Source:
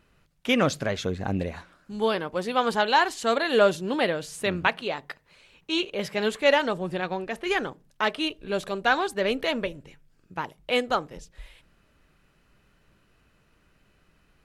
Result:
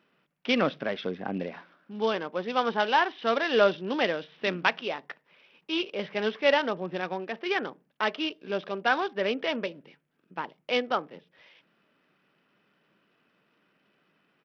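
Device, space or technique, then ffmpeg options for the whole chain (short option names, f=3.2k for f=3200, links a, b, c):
Bluetooth headset: -filter_complex "[0:a]asettb=1/sr,asplit=3[a][b][c];[a]atrim=end=3.114[d];[b]atrim=start=3.11:end=4.88,asetpts=PTS-STARTPTS,afade=t=in:d=0.004:c=qsin,afade=t=out:st=1.766:d=0.004:c=qsin,highshelf=f=2.1k:g=3.5[e];[c]atrim=start=4.876[f];[d][e]acrossfade=d=0.004:c1=hsin:c2=qsin[g];[g][f]acrossfade=d=0.004:c1=qsin:c2=hsin,highpass=f=180:w=0.5412,highpass=f=180:w=1.3066,aresample=8000,aresample=44100,volume=-2.5dB" -ar 44100 -c:a sbc -b:a 64k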